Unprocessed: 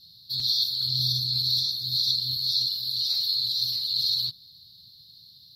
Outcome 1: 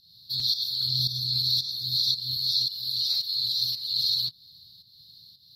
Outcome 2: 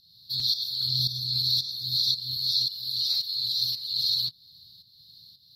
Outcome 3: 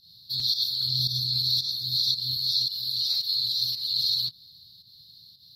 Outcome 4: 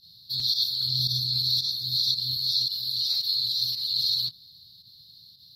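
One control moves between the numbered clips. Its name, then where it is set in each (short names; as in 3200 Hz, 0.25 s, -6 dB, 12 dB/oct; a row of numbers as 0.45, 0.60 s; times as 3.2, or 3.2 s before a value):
pump, release: 312, 469, 151, 81 ms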